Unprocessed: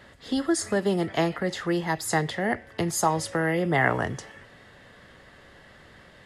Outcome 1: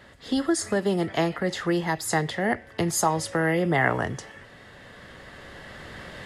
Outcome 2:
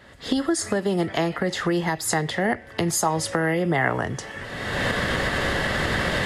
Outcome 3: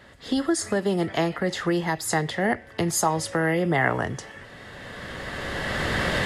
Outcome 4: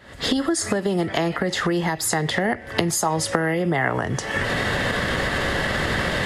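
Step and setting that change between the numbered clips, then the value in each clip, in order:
camcorder AGC, rising by: 5.3, 35, 14, 90 dB per second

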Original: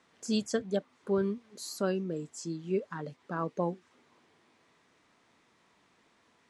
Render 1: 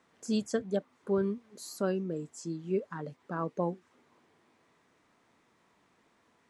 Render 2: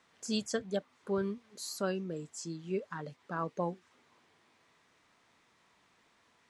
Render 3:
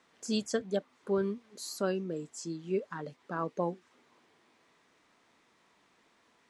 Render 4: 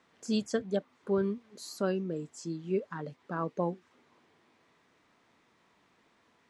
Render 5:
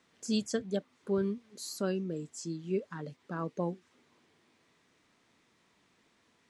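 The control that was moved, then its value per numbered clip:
parametric band, centre frequency: 4,000, 290, 99, 11,000, 910 Hertz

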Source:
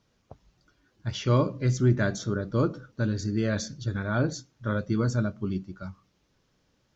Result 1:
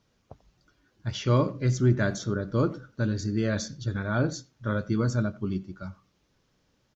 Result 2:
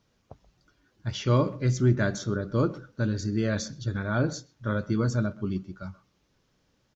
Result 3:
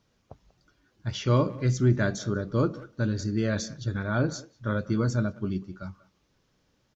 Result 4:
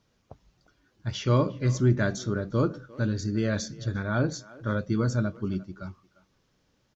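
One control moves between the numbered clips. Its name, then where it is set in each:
far-end echo of a speakerphone, delay time: 90, 130, 190, 350 milliseconds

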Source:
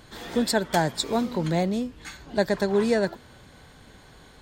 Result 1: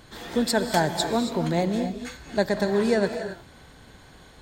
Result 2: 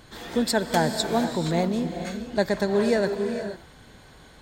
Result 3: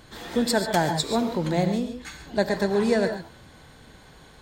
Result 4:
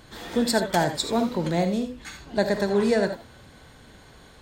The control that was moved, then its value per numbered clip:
reverb whose tail is shaped and stops, gate: 300, 510, 160, 100 milliseconds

